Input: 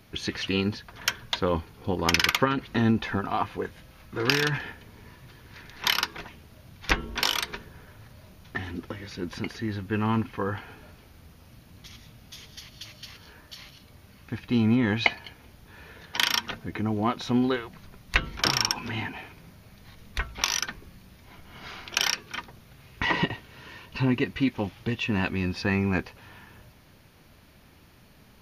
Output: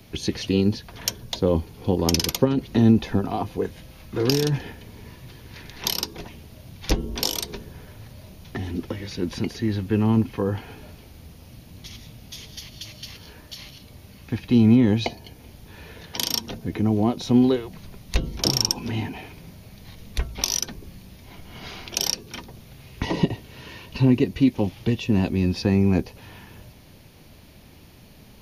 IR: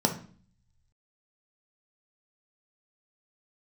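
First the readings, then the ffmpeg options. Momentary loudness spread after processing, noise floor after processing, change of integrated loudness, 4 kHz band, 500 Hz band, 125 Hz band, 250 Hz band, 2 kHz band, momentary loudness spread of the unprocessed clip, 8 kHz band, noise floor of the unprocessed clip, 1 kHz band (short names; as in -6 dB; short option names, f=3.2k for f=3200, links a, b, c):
21 LU, -48 dBFS, +4.0 dB, 0.0 dB, +5.5 dB, +7.0 dB, +7.0 dB, -8.5 dB, 21 LU, +5.0 dB, -55 dBFS, -3.0 dB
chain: -filter_complex "[0:a]equalizer=f=1.4k:t=o:w=1.1:g=-8,acrossover=split=230|760|4500[a][b][c][d];[c]acompressor=threshold=-45dB:ratio=6[e];[a][b][e][d]amix=inputs=4:normalize=0,volume=7dB"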